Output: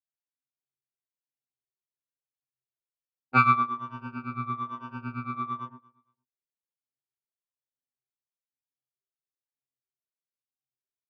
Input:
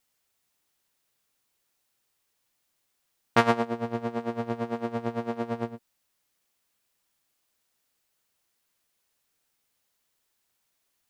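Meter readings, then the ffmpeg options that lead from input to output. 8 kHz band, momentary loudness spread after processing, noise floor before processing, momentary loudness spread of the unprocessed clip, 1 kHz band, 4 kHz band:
under -15 dB, 16 LU, -76 dBFS, 9 LU, +4.5 dB, -9.0 dB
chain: -filter_complex "[0:a]afftfilt=real='re*pow(10,17/40*sin(2*PI*(1.2*log(max(b,1)*sr/1024/100)/log(2)-(-1.1)*(pts-256)/sr)))':imag='im*pow(10,17/40*sin(2*PI*(1.2*log(max(b,1)*sr/1024/100)/log(2)-(-1.1)*(pts-256)/sr)))':win_size=1024:overlap=0.75,adynamicequalizer=threshold=0.00708:dfrequency=1600:dqfactor=6:tfrequency=1600:tqfactor=6:attack=5:release=100:ratio=0.375:range=1.5:mode=cutabove:tftype=bell,anlmdn=0.398,highpass=190,lowpass=2300,asplit=2[s0][s1];[s1]aecho=0:1:231|462:0.0631|0.0145[s2];[s0][s2]amix=inputs=2:normalize=0,afftfilt=real='re*2.45*eq(mod(b,6),0)':imag='im*2.45*eq(mod(b,6),0)':win_size=2048:overlap=0.75,volume=1.58"

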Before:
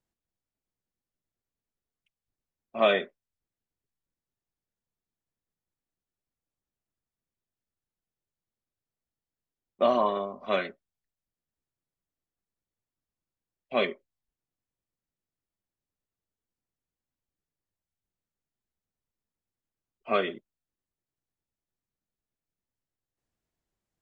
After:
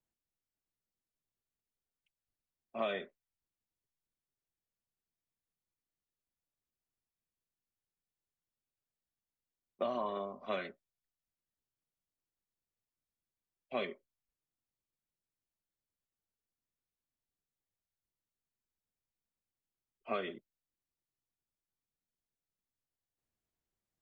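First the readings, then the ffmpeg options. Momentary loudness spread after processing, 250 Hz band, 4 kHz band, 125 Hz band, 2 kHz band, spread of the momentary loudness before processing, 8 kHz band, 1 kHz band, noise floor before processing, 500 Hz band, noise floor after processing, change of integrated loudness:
17 LU, -10.0 dB, -12.0 dB, -9.0 dB, -11.5 dB, 12 LU, no reading, -11.0 dB, under -85 dBFS, -11.5 dB, under -85 dBFS, -11.5 dB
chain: -filter_complex "[0:a]acrossover=split=140[s0][s1];[s1]acompressor=threshold=0.0501:ratio=6[s2];[s0][s2]amix=inputs=2:normalize=0,volume=0.501"

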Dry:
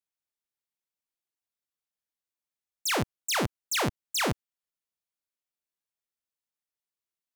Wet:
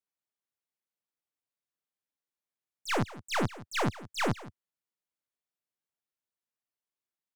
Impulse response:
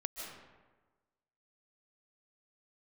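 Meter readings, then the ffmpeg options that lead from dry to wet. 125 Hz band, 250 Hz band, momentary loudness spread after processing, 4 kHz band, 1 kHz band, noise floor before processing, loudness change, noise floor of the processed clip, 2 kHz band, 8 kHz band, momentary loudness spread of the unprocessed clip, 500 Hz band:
+0.5 dB, 0.0 dB, 8 LU, -7.0 dB, -1.0 dB, under -85 dBFS, -3.5 dB, under -85 dBFS, -3.0 dB, -11.5 dB, 3 LU, -1.5 dB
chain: -filter_complex "[0:a]acrossover=split=3600[s0][s1];[s1]acompressor=threshold=0.01:ratio=4:attack=1:release=60[s2];[s0][s2]amix=inputs=2:normalize=0,highpass=f=88:w=0.5412,highpass=f=88:w=1.3066,highshelf=f=2600:g=-7,aeval=exprs='0.158*(cos(1*acos(clip(val(0)/0.158,-1,1)))-cos(1*PI/2))+0.0224*(cos(6*acos(clip(val(0)/0.158,-1,1)))-cos(6*PI/2))':c=same,aecho=1:1:168:0.133"

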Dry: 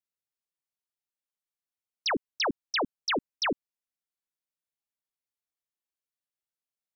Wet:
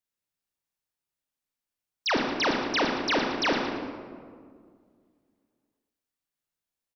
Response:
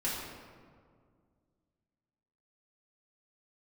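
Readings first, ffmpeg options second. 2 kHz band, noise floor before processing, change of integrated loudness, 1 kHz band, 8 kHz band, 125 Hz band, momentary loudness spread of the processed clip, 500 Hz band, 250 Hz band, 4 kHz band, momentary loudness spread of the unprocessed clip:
+4.5 dB, under -85 dBFS, +4.0 dB, +4.5 dB, no reading, +7.5 dB, 13 LU, +5.0 dB, +6.5 dB, +2.5 dB, 2 LU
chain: -filter_complex "[0:a]lowshelf=f=220:g=4,acrossover=split=4900[s0][s1];[s1]acompressor=threshold=0.0141:ratio=4:attack=1:release=60[s2];[s0][s2]amix=inputs=2:normalize=0,aecho=1:1:114|228|342|456:0.316|0.12|0.0457|0.0174,asplit=2[s3][s4];[1:a]atrim=start_sample=2205,adelay=30[s5];[s4][s5]afir=irnorm=-1:irlink=0,volume=0.447[s6];[s3][s6]amix=inputs=2:normalize=0,volume=1.19"

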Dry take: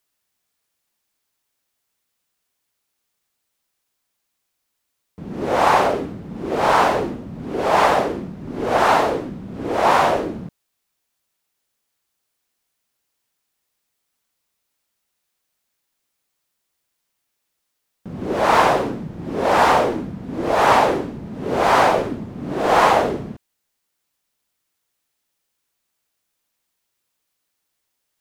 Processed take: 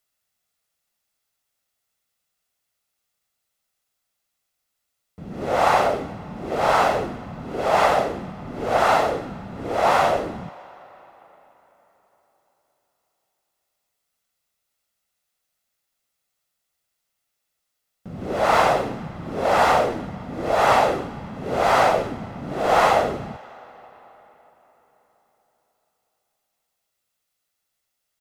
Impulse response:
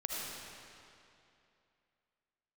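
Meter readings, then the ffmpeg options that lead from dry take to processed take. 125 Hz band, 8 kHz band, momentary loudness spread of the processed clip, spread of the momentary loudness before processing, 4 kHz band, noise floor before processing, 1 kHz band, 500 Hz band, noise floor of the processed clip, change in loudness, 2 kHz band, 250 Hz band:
-2.5 dB, -2.5 dB, 17 LU, 15 LU, -2.5 dB, -76 dBFS, -2.5 dB, -2.0 dB, -78 dBFS, -2.5 dB, -2.5 dB, -5.5 dB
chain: -filter_complex "[0:a]aecho=1:1:1.5:0.33,asplit=2[s0][s1];[1:a]atrim=start_sample=2205,asetrate=27342,aresample=44100,lowshelf=f=360:g=-11[s2];[s1][s2]afir=irnorm=-1:irlink=0,volume=0.0794[s3];[s0][s3]amix=inputs=2:normalize=0,volume=0.668"

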